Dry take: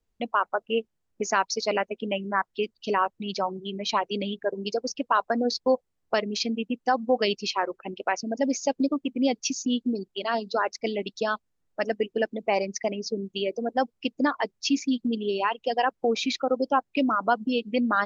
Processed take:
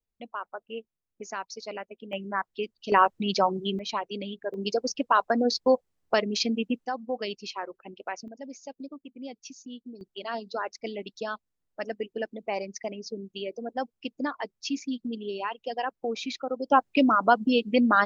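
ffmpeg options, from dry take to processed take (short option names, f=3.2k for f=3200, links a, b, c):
-af "asetnsamples=n=441:p=0,asendcmd='2.13 volume volume -4dB;2.92 volume volume 4.5dB;3.79 volume volume -5.5dB;4.54 volume volume 1dB;6.85 volume volume -8.5dB;8.28 volume volume -16dB;10.01 volume volume -6.5dB;16.7 volume volume 3dB',volume=-11.5dB"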